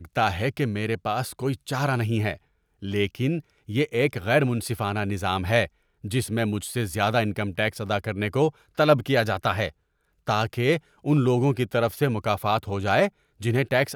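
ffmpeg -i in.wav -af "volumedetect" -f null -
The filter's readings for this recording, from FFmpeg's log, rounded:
mean_volume: -24.9 dB
max_volume: -6.0 dB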